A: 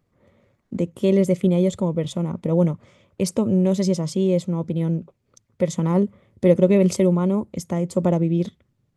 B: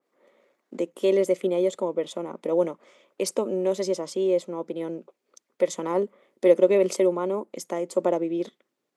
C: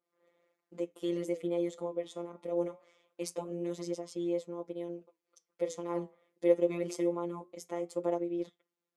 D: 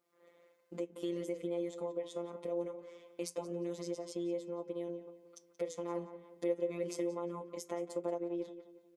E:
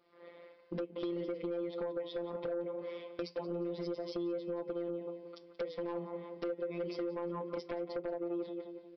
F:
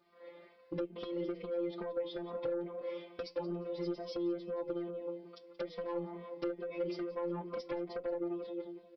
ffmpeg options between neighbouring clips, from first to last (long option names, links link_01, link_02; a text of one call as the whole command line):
ffmpeg -i in.wav -af "highpass=frequency=320:width=0.5412,highpass=frequency=320:width=1.3066,adynamicequalizer=threshold=0.00631:dfrequency=2300:dqfactor=0.7:tfrequency=2300:tqfactor=0.7:attack=5:release=100:ratio=0.375:range=2.5:mode=cutabove:tftype=highshelf" out.wav
ffmpeg -i in.wav -af "afftfilt=real='hypot(re,im)*cos(PI*b)':imag='0':win_size=1024:overlap=0.75,flanger=delay=4.9:depth=8.6:regen=-77:speed=0.23:shape=sinusoidal,volume=-3dB" out.wav
ffmpeg -i in.wav -filter_complex "[0:a]acompressor=threshold=-50dB:ratio=2,asplit=2[link_01][link_02];[link_02]adelay=178,lowpass=frequency=3200:poles=1,volume=-12dB,asplit=2[link_03][link_04];[link_04]adelay=178,lowpass=frequency=3200:poles=1,volume=0.41,asplit=2[link_05][link_06];[link_06]adelay=178,lowpass=frequency=3200:poles=1,volume=0.41,asplit=2[link_07][link_08];[link_08]adelay=178,lowpass=frequency=3200:poles=1,volume=0.41[link_09];[link_03][link_05][link_07][link_09]amix=inputs=4:normalize=0[link_10];[link_01][link_10]amix=inputs=2:normalize=0,volume=6.5dB" out.wav
ffmpeg -i in.wav -af "acompressor=threshold=-43dB:ratio=6,aresample=11025,aeval=exprs='0.0251*sin(PI/2*1.78*val(0)/0.0251)':channel_layout=same,aresample=44100,volume=1.5dB" out.wav
ffmpeg -i in.wav -filter_complex "[0:a]asplit=2[link_01][link_02];[link_02]adelay=2.9,afreqshift=2.3[link_03];[link_01][link_03]amix=inputs=2:normalize=1,volume=3dB" out.wav